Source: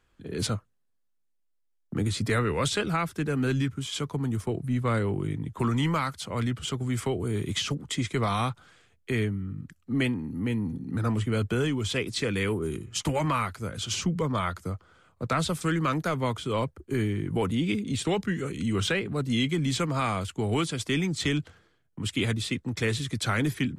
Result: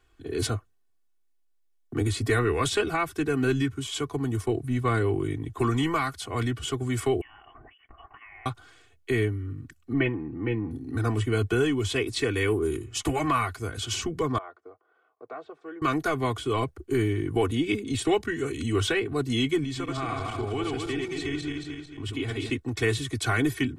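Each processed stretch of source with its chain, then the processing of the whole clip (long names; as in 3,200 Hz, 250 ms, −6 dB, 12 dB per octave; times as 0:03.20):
0:07.21–0:08.46: high-pass filter 1,200 Hz + downward compressor 5 to 1, threshold −48 dBFS + voice inversion scrambler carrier 3,200 Hz
0:09.93–0:10.71: low-pass filter 2,700 Hz 24 dB per octave + comb filter 6 ms, depth 51%
0:14.38–0:15.82: four-pole ladder band-pass 630 Hz, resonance 30% + one half of a high-frequency compander encoder only
0:19.64–0:22.50: feedback delay that plays each chunk backwards 111 ms, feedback 58%, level −2 dB + high-shelf EQ 6,000 Hz −11 dB + downward compressor 2 to 1, threshold −34 dBFS
whole clip: comb filter 2.7 ms, depth 96%; dynamic equaliser 4,800 Hz, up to −4 dB, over −40 dBFS, Q 0.95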